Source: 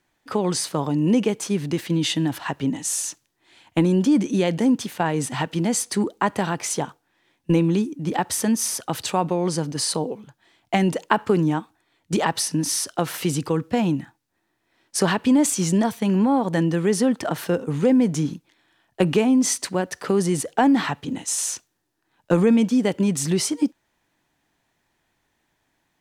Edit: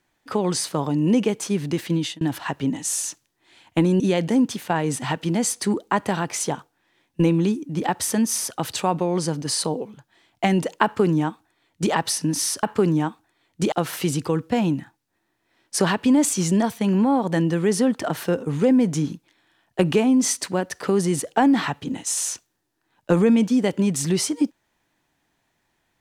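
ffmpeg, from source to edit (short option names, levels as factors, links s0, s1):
-filter_complex "[0:a]asplit=5[s0][s1][s2][s3][s4];[s0]atrim=end=2.21,asetpts=PTS-STARTPTS,afade=t=out:st=1.95:d=0.26[s5];[s1]atrim=start=2.21:end=4.002,asetpts=PTS-STARTPTS,afade=t=in:d=0.004:c=hsin[s6];[s2]atrim=start=4.298:end=12.932[s7];[s3]atrim=start=11.138:end=12.232[s8];[s4]atrim=start=12.928[s9];[s5][s6]concat=n=2:v=0:a=1[s10];[s10][s7]acrossfade=d=0.004:c1=hsin:c2=hsin[s11];[s11][s8]acrossfade=d=0.004:c1=hsin:c2=hsin[s12];[s12][s9]acrossfade=d=0.004:c1=hsin:c2=hsin"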